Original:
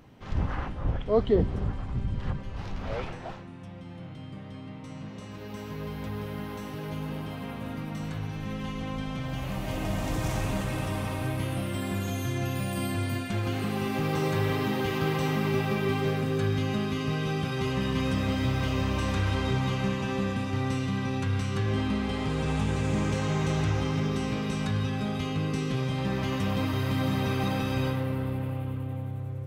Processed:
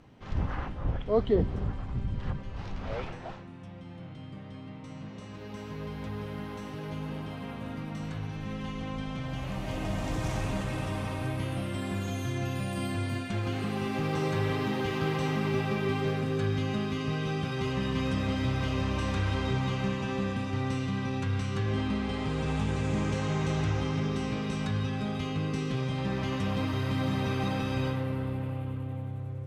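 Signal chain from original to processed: Bessel low-pass 8.4 kHz, order 2; trim -2 dB

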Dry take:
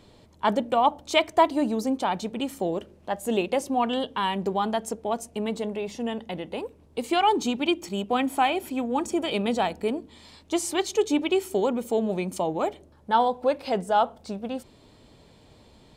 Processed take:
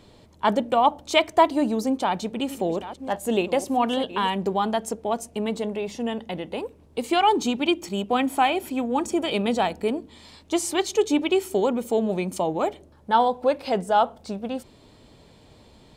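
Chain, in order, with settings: 1.83–4.30 s: chunks repeated in reverse 649 ms, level -13 dB; trim +2 dB

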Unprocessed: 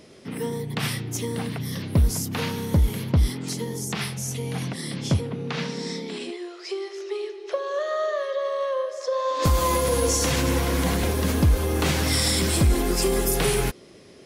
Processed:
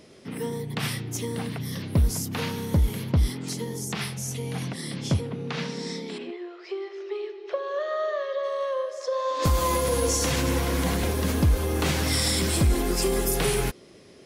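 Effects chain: 6.17–8.42 s: low-pass 2.3 kHz -> 5 kHz 12 dB/octave; trim -2 dB

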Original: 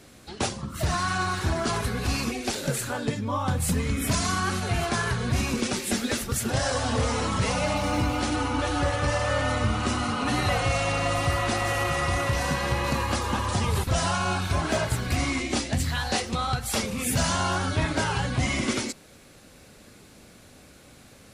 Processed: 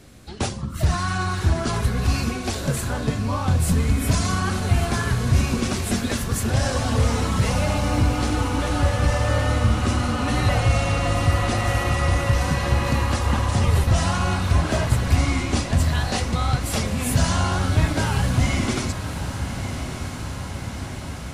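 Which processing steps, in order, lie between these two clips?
bass shelf 150 Hz +10.5 dB; echo that smears into a reverb 1191 ms, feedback 72%, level -9.5 dB

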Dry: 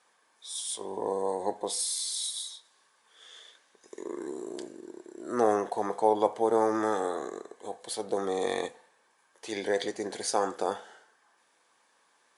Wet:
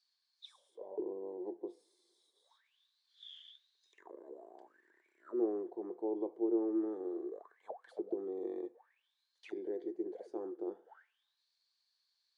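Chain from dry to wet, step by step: auto-wah 350–4600 Hz, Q 14, down, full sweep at -31 dBFS; trim +4.5 dB

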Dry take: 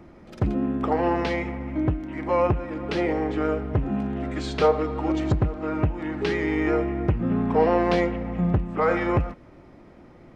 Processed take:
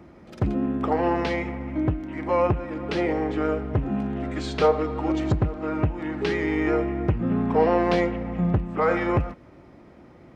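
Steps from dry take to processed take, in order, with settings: high-pass 46 Hz

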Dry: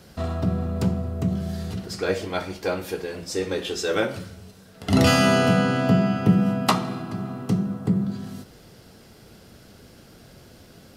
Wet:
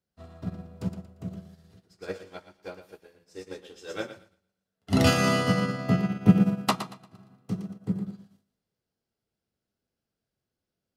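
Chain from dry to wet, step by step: on a send: thinning echo 116 ms, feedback 51%, high-pass 220 Hz, level -5 dB; on the sum: upward expansion 2.5:1, over -39 dBFS; trim +1.5 dB

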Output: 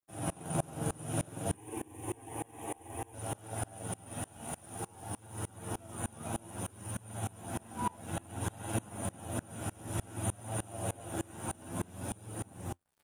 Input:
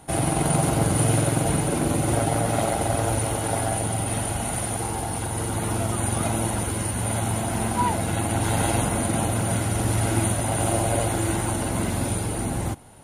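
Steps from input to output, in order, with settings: high-pass 80 Hz 24 dB/octave; peaking EQ 4.4 kHz -14 dB 0.21 oct; band-stop 2.1 kHz, Q 8.2; de-hum 140.5 Hz, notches 33; crossover distortion -44 dBFS; 1.54–3.14 s: static phaser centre 920 Hz, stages 8; bit crusher 9-bit; flange 0.57 Hz, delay 9.1 ms, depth 4.3 ms, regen +43%; sawtooth tremolo in dB swelling 3.3 Hz, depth 27 dB; trim -2.5 dB

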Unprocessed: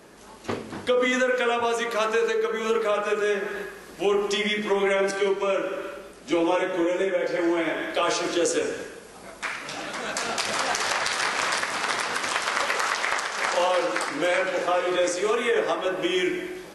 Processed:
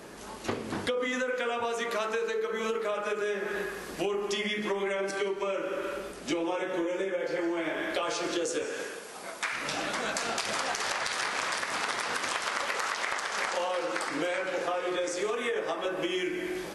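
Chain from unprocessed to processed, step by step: 8.64–9.53 s: high-pass 500 Hz 6 dB/octave; compression 6:1, threshold -32 dBFS, peak gain reduction 13 dB; trim +3.5 dB

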